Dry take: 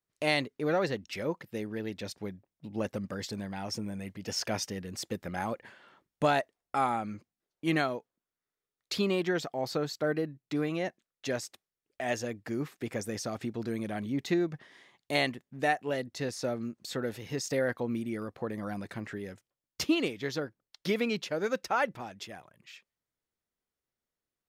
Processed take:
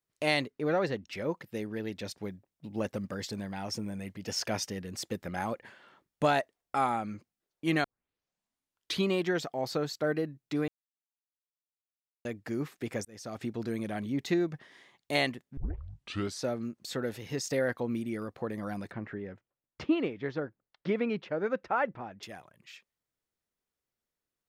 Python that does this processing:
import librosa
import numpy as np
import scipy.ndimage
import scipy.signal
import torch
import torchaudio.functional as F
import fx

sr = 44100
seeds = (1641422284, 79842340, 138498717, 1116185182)

y = fx.high_shelf(x, sr, hz=4200.0, db=-7.0, at=(0.5, 1.29))
y = fx.quant_float(y, sr, bits=6, at=(2.17, 4.28))
y = fx.lowpass(y, sr, hz=1900.0, slope=12, at=(18.91, 22.23))
y = fx.edit(y, sr, fx.tape_start(start_s=7.84, length_s=1.23),
    fx.silence(start_s=10.68, length_s=1.57),
    fx.fade_in_span(start_s=13.05, length_s=0.42),
    fx.tape_start(start_s=15.57, length_s=0.86), tone=tone)